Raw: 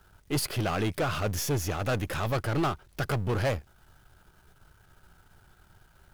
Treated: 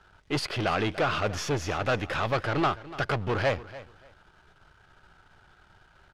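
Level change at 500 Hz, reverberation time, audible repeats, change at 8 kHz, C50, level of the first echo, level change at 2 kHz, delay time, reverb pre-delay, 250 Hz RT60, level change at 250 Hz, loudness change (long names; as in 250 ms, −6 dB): +2.5 dB, no reverb audible, 2, −5.5 dB, no reverb audible, −17.0 dB, +4.5 dB, 290 ms, no reverb audible, no reverb audible, 0.0 dB, +1.5 dB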